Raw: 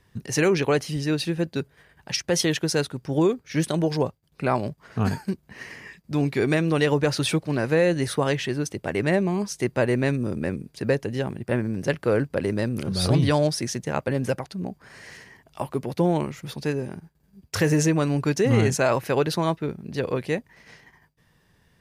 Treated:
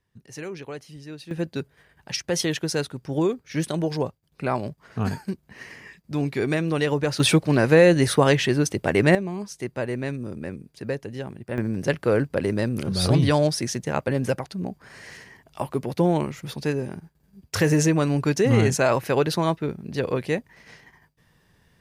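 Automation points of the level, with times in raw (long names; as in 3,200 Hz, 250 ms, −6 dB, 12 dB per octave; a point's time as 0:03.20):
−14.5 dB
from 0:01.31 −2 dB
from 0:07.20 +5.5 dB
from 0:09.15 −6 dB
from 0:11.58 +1 dB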